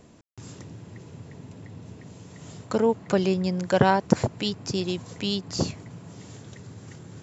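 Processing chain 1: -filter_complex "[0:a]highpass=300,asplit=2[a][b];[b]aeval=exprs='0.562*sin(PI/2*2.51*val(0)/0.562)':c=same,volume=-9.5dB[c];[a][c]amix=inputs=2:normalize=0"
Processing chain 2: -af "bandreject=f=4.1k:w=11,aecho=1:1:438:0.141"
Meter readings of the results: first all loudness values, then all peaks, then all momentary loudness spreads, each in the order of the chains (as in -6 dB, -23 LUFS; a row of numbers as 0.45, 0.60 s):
-21.5, -25.5 LUFS; -6.5, -3.0 dBFS; 23, 22 LU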